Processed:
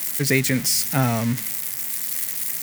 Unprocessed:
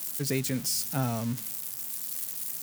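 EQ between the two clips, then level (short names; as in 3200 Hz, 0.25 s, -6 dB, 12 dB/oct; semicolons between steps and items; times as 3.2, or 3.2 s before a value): bell 2000 Hz +10.5 dB 0.52 oct; +8.5 dB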